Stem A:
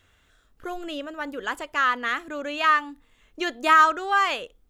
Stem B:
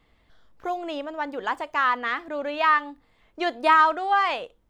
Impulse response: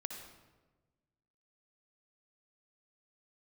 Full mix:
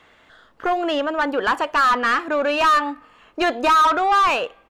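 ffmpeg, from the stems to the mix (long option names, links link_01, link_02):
-filter_complex "[0:a]volume=-8dB,asplit=2[link_01][link_02];[link_02]volume=-22.5dB[link_03];[1:a]adelay=0.9,volume=-4dB[link_04];[2:a]atrim=start_sample=2205[link_05];[link_03][link_05]afir=irnorm=-1:irlink=0[link_06];[link_01][link_04][link_06]amix=inputs=3:normalize=0,asplit=2[link_07][link_08];[link_08]highpass=frequency=720:poles=1,volume=25dB,asoftclip=type=tanh:threshold=-8dB[link_09];[link_07][link_09]amix=inputs=2:normalize=0,lowpass=frequency=1800:poles=1,volume=-6dB"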